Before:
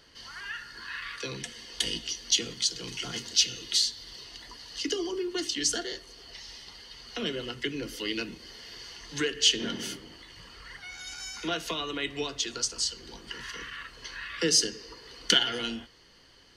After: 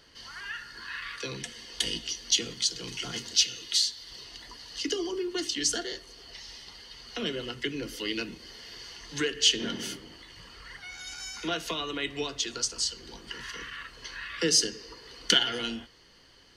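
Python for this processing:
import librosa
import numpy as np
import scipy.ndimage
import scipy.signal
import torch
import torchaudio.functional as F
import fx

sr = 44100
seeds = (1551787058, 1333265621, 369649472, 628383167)

y = fx.low_shelf(x, sr, hz=490.0, db=-7.5, at=(3.43, 4.11))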